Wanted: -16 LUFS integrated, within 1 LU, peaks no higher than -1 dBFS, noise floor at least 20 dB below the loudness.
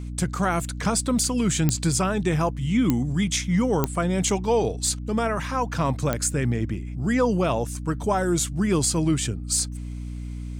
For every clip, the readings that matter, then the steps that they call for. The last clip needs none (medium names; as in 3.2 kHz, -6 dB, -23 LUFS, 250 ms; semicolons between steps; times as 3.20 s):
clicks found 4; hum 60 Hz; highest harmonic 300 Hz; hum level -30 dBFS; loudness -24.0 LUFS; peak level -5.5 dBFS; loudness target -16.0 LUFS
-> de-click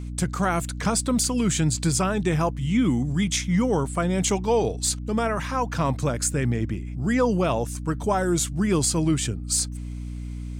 clicks found 0; hum 60 Hz; highest harmonic 300 Hz; hum level -30 dBFS
-> de-hum 60 Hz, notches 5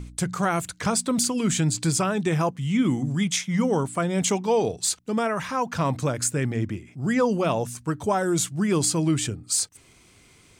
hum not found; loudness -24.5 LUFS; peak level -11.0 dBFS; loudness target -16.0 LUFS
-> trim +8.5 dB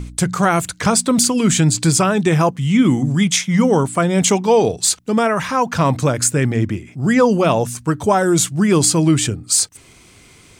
loudness -16.0 LUFS; peak level -2.5 dBFS; noise floor -47 dBFS